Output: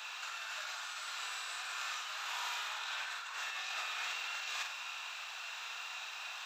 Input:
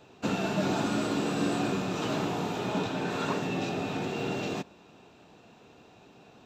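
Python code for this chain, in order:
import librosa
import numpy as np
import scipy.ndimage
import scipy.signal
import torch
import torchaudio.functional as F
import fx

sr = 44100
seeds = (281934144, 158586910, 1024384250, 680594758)

y = scipy.signal.sosfilt(scipy.signal.butter(4, 1200.0, 'highpass', fs=sr, output='sos'), x)
y = fx.over_compress(y, sr, threshold_db=-50.0, ratio=-1.0)
y = fx.room_flutter(y, sr, wall_m=8.2, rt60_s=0.47)
y = y * 10.0 ** (8.0 / 20.0)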